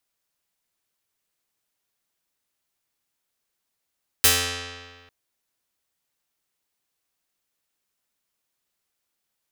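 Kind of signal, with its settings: plucked string F2, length 0.85 s, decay 1.64 s, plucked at 0.48, medium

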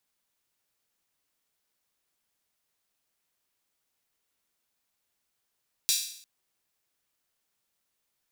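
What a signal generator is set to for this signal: open hi-hat length 0.35 s, high-pass 4.1 kHz, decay 0.63 s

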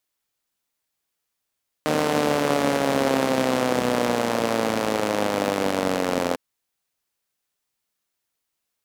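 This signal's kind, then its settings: four-cylinder engine model, changing speed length 4.50 s, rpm 4600, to 2600, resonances 270/490 Hz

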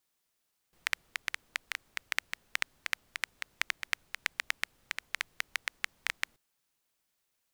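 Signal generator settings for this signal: rain from filtered ticks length 5.63 s, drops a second 7, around 2 kHz, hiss -29.5 dB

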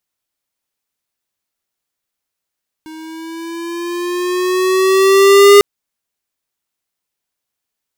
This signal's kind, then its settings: gliding synth tone square, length 2.75 s, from 314 Hz, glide +4.5 st, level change +28 dB, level -4 dB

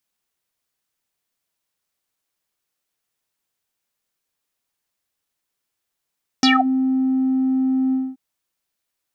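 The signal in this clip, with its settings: synth note square C4 12 dB/octave, low-pass 380 Hz, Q 11, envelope 4 oct, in 0.23 s, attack 2 ms, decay 0.19 s, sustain -9.5 dB, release 0.23 s, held 1.50 s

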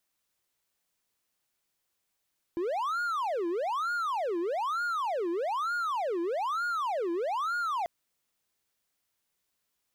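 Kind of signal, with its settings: siren wail 336–1430 Hz 1.1 per s triangle -26 dBFS 5.29 s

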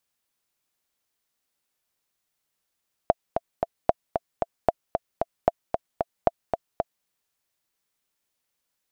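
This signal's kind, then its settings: metronome 227 bpm, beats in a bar 3, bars 5, 676 Hz, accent 6 dB -4 dBFS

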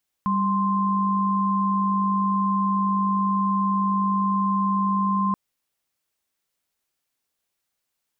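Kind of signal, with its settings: chord G3/C6 sine, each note -22 dBFS 5.08 s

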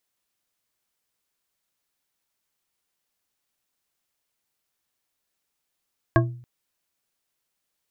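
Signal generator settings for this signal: glass hit bar, length 0.28 s, lowest mode 122 Hz, modes 5, decay 0.53 s, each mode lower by 1 dB, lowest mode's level -14.5 dB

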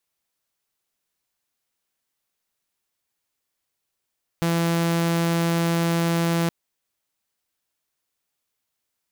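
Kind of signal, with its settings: tone saw 168 Hz -17 dBFS 2.07 s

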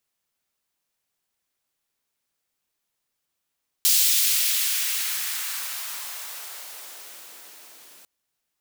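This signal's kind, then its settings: swept filtered noise white, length 4.20 s highpass, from 4 kHz, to 230 Hz, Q 0.98, exponential, gain ramp -32.5 dB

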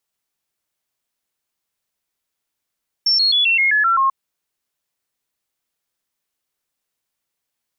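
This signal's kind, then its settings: stepped sine 5.42 kHz down, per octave 3, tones 8, 0.13 s, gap 0.00 s -12.5 dBFS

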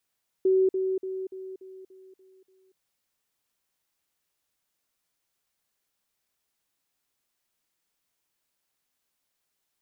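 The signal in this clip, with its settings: level ladder 378 Hz -18 dBFS, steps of -6 dB, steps 8, 0.24 s 0.05 s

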